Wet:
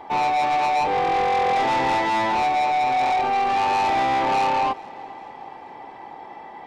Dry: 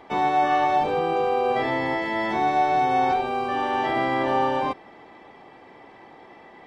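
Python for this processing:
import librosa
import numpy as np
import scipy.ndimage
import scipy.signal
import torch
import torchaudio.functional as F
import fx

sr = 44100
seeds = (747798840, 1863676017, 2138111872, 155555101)

p1 = fx.peak_eq(x, sr, hz=860.0, db=11.5, octaves=0.46)
p2 = fx.rider(p1, sr, range_db=10, speed_s=0.5)
p3 = 10.0 ** (-21.5 / 20.0) * np.tanh(p2 / 10.0 ** (-21.5 / 20.0))
p4 = p3 + fx.echo_feedback(p3, sr, ms=419, feedback_pct=53, wet_db=-23, dry=0)
y = F.gain(torch.from_numpy(p4), 3.0).numpy()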